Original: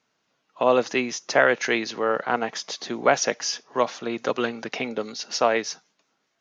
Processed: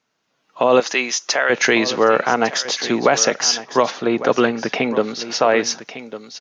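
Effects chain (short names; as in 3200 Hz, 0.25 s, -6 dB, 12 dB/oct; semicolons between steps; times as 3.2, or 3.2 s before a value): limiter -14 dBFS, peak gain reduction 9.5 dB; 0.8–1.5 HPF 970 Hz 6 dB/oct; echo 1.154 s -14 dB; AGC gain up to 12 dB; 3.9–5.65 LPF 2000 Hz -> 3200 Hz 6 dB/oct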